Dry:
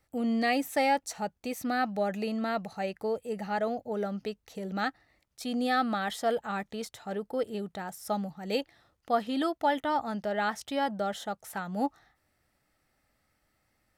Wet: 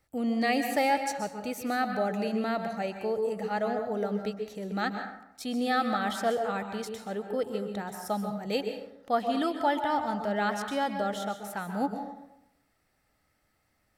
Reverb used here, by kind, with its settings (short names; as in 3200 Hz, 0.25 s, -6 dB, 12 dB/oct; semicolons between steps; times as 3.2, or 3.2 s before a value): plate-style reverb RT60 0.82 s, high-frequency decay 0.5×, pre-delay 0.115 s, DRR 5.5 dB